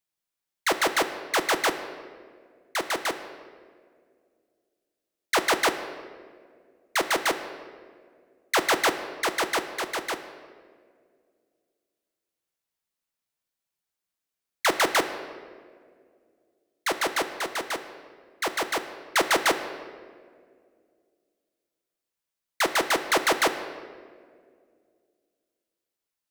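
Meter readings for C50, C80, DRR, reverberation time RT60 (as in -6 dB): 10.0 dB, 11.0 dB, 8.0 dB, 2.0 s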